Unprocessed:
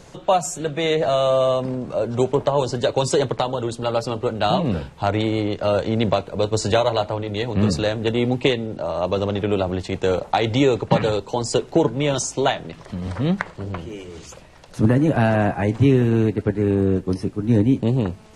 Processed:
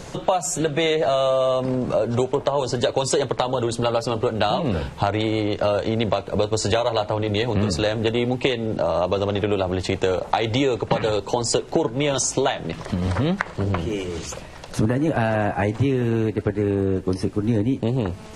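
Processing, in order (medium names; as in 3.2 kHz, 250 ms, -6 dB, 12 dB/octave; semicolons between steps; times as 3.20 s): dynamic bell 170 Hz, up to -5 dB, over -29 dBFS, Q 0.9; compression 5:1, threshold -26 dBFS, peak gain reduction 12 dB; trim +8 dB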